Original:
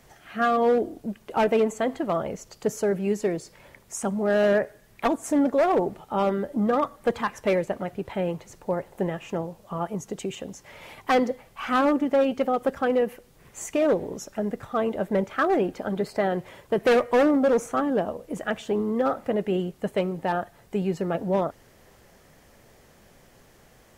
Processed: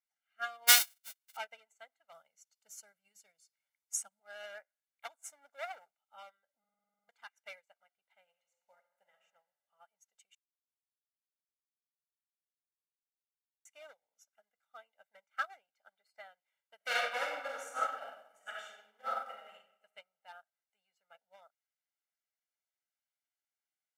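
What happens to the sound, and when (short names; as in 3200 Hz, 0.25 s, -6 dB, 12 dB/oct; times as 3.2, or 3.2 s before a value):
0.67–1.35 spectral whitening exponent 0.1
2.12–4.2 tone controls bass +13 dB, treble +6 dB
5.13–5.91 sample leveller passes 1
6.59 stutter in place 0.05 s, 10 plays
8.22–9.21 reverb throw, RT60 1.8 s, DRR 2.5 dB
10.35–13.65 mute
16.76–19.53 reverb throw, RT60 1.8 s, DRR -5 dB
whole clip: HPF 1500 Hz 12 dB/oct; comb 1.4 ms, depth 91%; upward expander 2.5:1, over -44 dBFS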